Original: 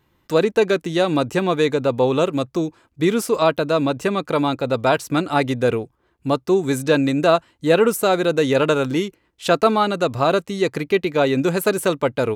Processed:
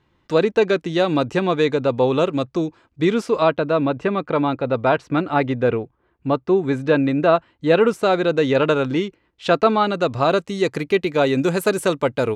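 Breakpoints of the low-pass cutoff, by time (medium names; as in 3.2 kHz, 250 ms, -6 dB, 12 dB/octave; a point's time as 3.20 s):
3.12 s 5.2 kHz
3.68 s 2.6 kHz
7.30 s 2.6 kHz
7.80 s 4.2 kHz
9.76 s 4.2 kHz
10.75 s 10 kHz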